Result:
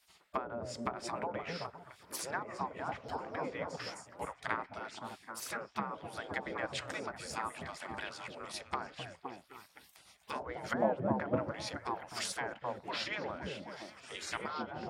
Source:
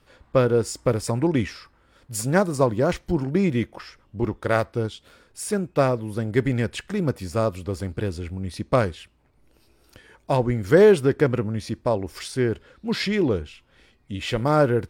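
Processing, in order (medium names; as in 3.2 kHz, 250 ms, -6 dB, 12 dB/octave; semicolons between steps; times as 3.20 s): low-pass that closes with the level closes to 620 Hz, closed at -15 dBFS; high-pass 87 Hz 24 dB/octave; treble shelf 10 kHz +11.5 dB; repeats whose band climbs or falls 259 ms, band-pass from 370 Hz, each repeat 0.7 oct, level -1 dB; spectral gate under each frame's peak -15 dB weak; trim -2.5 dB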